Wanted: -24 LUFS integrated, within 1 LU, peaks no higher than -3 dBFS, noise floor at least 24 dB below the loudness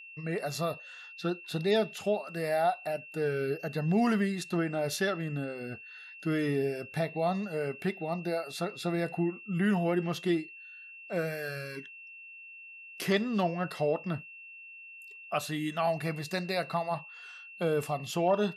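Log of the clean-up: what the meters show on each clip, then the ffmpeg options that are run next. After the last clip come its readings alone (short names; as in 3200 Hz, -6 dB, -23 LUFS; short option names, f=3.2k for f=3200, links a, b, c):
steady tone 2700 Hz; tone level -46 dBFS; loudness -32.0 LUFS; peak -16.5 dBFS; loudness target -24.0 LUFS
-> -af "bandreject=f=2.7k:w=30"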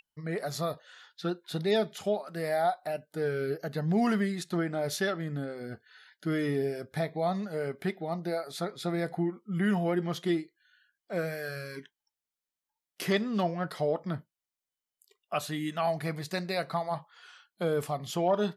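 steady tone none; loudness -32.0 LUFS; peak -16.5 dBFS; loudness target -24.0 LUFS
-> -af "volume=8dB"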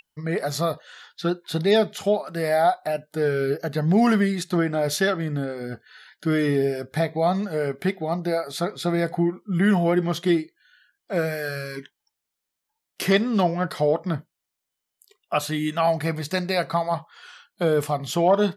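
loudness -24.0 LUFS; peak -8.5 dBFS; noise floor -83 dBFS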